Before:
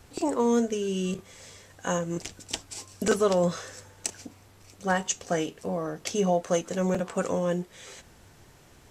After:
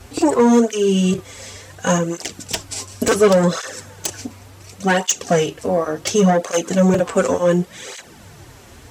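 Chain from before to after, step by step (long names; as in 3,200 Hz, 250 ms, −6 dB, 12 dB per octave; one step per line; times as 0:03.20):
sine wavefolder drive 9 dB, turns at −8 dBFS
through-zero flanger with one copy inverted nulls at 0.69 Hz, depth 6.9 ms
level +2 dB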